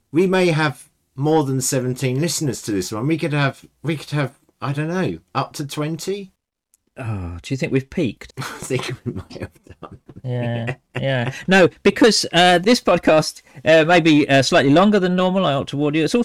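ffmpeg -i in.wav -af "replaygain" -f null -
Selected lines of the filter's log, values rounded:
track_gain = -3.8 dB
track_peak = 0.356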